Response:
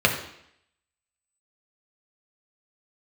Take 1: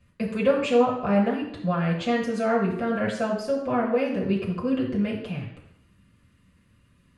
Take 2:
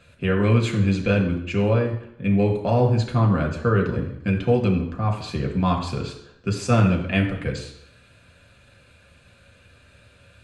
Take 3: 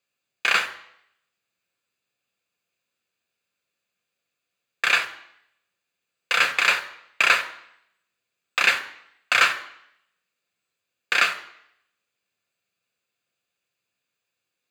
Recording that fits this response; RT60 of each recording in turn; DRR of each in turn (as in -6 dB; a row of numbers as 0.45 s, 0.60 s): 2; 0.70 s, 0.70 s, 0.70 s; -4.5 dB, 1.0 dB, 8.5 dB